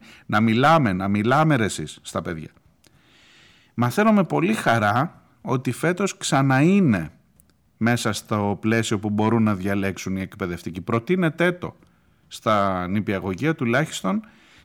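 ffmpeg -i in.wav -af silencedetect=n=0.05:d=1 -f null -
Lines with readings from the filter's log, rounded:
silence_start: 2.46
silence_end: 3.78 | silence_duration: 1.32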